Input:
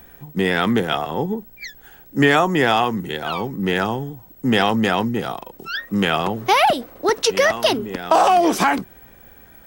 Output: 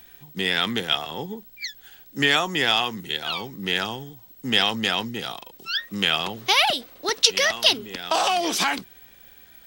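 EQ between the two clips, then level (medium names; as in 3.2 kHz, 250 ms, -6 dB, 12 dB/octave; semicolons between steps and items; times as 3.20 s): treble shelf 2.3 kHz +8.5 dB; peaking EQ 3.7 kHz +10.5 dB 1.6 oct; -10.5 dB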